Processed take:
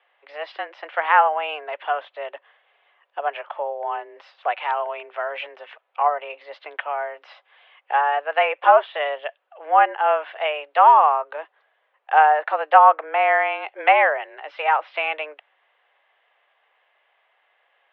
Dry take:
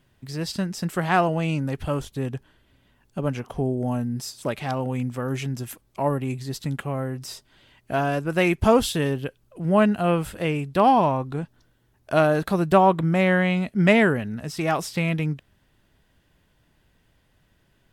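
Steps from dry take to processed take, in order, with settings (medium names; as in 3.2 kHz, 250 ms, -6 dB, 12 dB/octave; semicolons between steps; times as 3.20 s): mistuned SSB +150 Hz 460–2900 Hz; low-pass that closes with the level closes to 2.1 kHz, closed at -21.5 dBFS; trim +6 dB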